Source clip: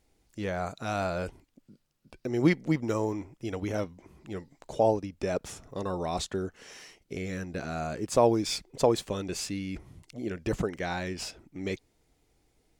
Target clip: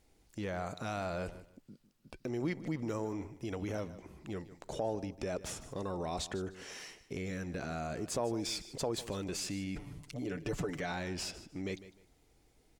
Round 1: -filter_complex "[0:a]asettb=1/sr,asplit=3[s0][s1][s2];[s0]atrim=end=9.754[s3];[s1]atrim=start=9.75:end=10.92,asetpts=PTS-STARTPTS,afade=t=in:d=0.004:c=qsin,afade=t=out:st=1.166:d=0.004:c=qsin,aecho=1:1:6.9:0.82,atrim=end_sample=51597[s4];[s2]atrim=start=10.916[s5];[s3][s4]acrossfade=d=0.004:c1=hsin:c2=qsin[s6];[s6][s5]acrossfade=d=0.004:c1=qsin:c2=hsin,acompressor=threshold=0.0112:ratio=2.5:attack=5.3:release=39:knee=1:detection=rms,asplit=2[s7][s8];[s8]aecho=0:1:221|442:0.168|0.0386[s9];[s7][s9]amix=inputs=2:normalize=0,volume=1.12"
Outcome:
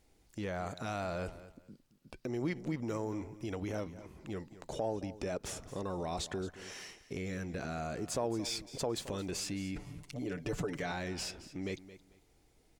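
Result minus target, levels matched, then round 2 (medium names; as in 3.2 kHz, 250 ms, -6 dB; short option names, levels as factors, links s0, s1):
echo 69 ms late
-filter_complex "[0:a]asettb=1/sr,asplit=3[s0][s1][s2];[s0]atrim=end=9.754[s3];[s1]atrim=start=9.75:end=10.92,asetpts=PTS-STARTPTS,afade=t=in:d=0.004:c=qsin,afade=t=out:st=1.166:d=0.004:c=qsin,aecho=1:1:6.9:0.82,atrim=end_sample=51597[s4];[s2]atrim=start=10.916[s5];[s3][s4]acrossfade=d=0.004:c1=hsin:c2=qsin[s6];[s6][s5]acrossfade=d=0.004:c1=qsin:c2=hsin,acompressor=threshold=0.0112:ratio=2.5:attack=5.3:release=39:knee=1:detection=rms,asplit=2[s7][s8];[s8]aecho=0:1:152|304:0.168|0.0386[s9];[s7][s9]amix=inputs=2:normalize=0,volume=1.12"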